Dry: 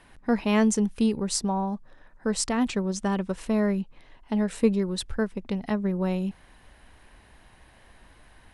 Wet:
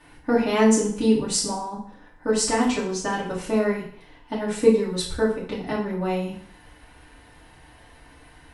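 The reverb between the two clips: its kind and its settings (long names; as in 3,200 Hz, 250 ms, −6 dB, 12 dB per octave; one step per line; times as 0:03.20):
feedback delay network reverb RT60 0.58 s, low-frequency decay 0.9×, high-frequency decay 0.9×, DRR −7.5 dB
level −3 dB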